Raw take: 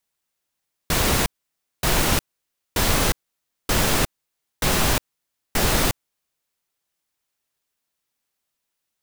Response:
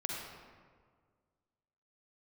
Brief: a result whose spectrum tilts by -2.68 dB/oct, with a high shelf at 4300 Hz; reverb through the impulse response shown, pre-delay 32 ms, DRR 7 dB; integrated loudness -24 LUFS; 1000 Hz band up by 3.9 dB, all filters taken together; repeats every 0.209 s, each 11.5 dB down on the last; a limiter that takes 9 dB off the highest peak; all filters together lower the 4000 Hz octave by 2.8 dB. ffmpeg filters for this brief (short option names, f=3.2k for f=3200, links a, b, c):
-filter_complex "[0:a]equalizer=f=1k:t=o:g=5,equalizer=f=4k:t=o:g=-7,highshelf=f=4.3k:g=5,alimiter=limit=-13.5dB:level=0:latency=1,aecho=1:1:209|418|627:0.266|0.0718|0.0194,asplit=2[a][b];[1:a]atrim=start_sample=2205,adelay=32[c];[b][c]afir=irnorm=-1:irlink=0,volume=-10dB[d];[a][d]amix=inputs=2:normalize=0,volume=1dB"